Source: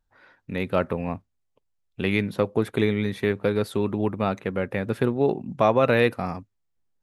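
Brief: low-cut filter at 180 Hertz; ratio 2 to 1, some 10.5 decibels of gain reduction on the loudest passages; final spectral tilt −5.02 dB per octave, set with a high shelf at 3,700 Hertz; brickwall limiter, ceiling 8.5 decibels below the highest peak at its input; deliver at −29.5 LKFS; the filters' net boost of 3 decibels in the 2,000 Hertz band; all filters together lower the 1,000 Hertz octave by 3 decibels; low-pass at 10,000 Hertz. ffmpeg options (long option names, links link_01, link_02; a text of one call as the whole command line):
ffmpeg -i in.wav -af "highpass=180,lowpass=10000,equalizer=frequency=1000:width_type=o:gain=-5.5,equalizer=frequency=2000:width_type=o:gain=6.5,highshelf=frequency=3700:gain=-5.5,acompressor=threshold=-36dB:ratio=2,volume=8.5dB,alimiter=limit=-17dB:level=0:latency=1" out.wav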